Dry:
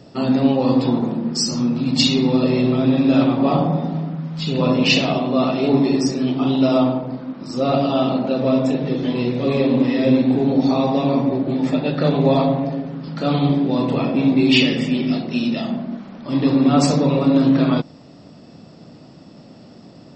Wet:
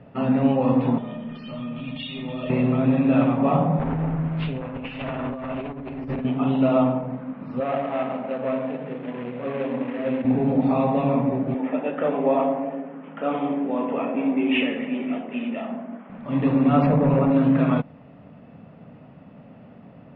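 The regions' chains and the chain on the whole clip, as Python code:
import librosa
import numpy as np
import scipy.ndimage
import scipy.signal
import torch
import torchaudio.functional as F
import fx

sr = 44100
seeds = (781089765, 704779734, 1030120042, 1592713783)

y = fx.chain(x, sr, fx.lowpass_res(hz=3300.0, q=15.0),
    fx.comb_fb(f0_hz=610.0, decay_s=0.2, harmonics='all', damping=0.0, mix_pct=90),
    fx.env_flatten(amount_pct=50), at=(0.98, 2.5))
y = fx.chain(y, sr, fx.lower_of_two(delay_ms=7.6),
    fx.over_compress(threshold_db=-26.0, ratio=-1.0), at=(3.79, 6.25))
y = fx.chain(y, sr, fx.median_filter(points=25),
    fx.highpass(hz=580.0, slope=6), at=(7.6, 10.25))
y = fx.chain(y, sr, fx.highpass(hz=260.0, slope=24),
    fx.high_shelf(hz=4300.0, db=-11.5),
    fx.resample_bad(factor=6, down='none', up='filtered'), at=(11.54, 16.1))
y = fx.chain(y, sr, fx.lowpass(hz=1300.0, slope=6),
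    fx.overload_stage(gain_db=12.5),
    fx.env_flatten(amount_pct=70), at=(16.86, 17.31))
y = scipy.signal.sosfilt(scipy.signal.butter(6, 2700.0, 'lowpass', fs=sr, output='sos'), y)
y = fx.peak_eq(y, sr, hz=340.0, db=-13.0, octaves=0.29)
y = y * librosa.db_to_amplitude(-1.5)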